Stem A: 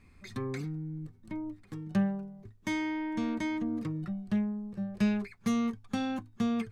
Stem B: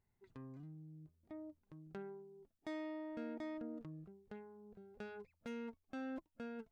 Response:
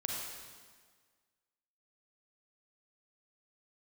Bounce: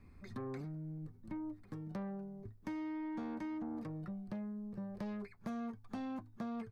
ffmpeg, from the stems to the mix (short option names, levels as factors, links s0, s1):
-filter_complex "[0:a]highshelf=f=2600:g=-10,asoftclip=type=tanh:threshold=0.0299,volume=1.06[s0];[1:a]adelay=9.9,volume=0.944[s1];[s0][s1]amix=inputs=2:normalize=0,highshelf=f=3200:g=-11,acrossover=split=540|1300[s2][s3][s4];[s2]acompressor=threshold=0.00708:ratio=4[s5];[s3]acompressor=threshold=0.00398:ratio=4[s6];[s4]acompressor=threshold=0.00112:ratio=4[s7];[s5][s6][s7]amix=inputs=3:normalize=0,aexciter=amount=3:drive=2.9:freq=4200"